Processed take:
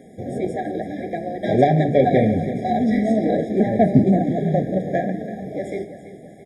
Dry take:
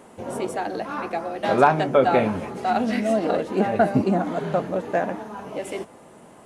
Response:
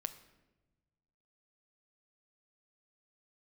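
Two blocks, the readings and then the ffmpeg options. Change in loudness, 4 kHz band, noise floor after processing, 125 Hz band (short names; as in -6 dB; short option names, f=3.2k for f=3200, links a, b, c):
+2.5 dB, n/a, -42 dBFS, +9.0 dB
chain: -filter_complex "[0:a]lowshelf=f=250:g=12,acrossover=split=7800[a][b];[b]acompressor=threshold=-60dB:ratio=4:attack=1:release=60[c];[a][c]amix=inputs=2:normalize=0,flanger=delay=4.3:depth=8.9:regen=-61:speed=0.77:shape=sinusoidal,aeval=exprs='0.596*(cos(1*acos(clip(val(0)/0.596,-1,1)))-cos(1*PI/2))+0.0376*(cos(6*acos(clip(val(0)/0.596,-1,1)))-cos(6*PI/2))':c=same,highpass=62,aecho=1:1:332|664|996|1328|1660:0.211|0.101|0.0487|0.0234|0.0112,asplit=2[d][e];[1:a]atrim=start_sample=2205[f];[e][f]afir=irnorm=-1:irlink=0,volume=10dB[g];[d][g]amix=inputs=2:normalize=0,afftfilt=real='re*eq(mod(floor(b*sr/1024/800),2),0)':imag='im*eq(mod(floor(b*sr/1024/800),2),0)':win_size=1024:overlap=0.75,volume=-7.5dB"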